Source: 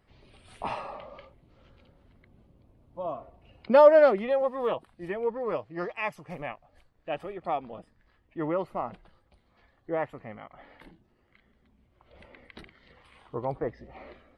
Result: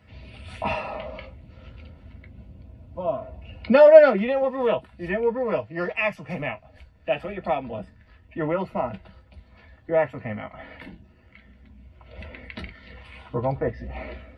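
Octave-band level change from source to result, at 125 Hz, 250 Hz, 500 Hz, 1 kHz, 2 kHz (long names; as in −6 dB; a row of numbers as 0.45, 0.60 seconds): +10.0, +6.5, +5.0, +2.0, +7.5 decibels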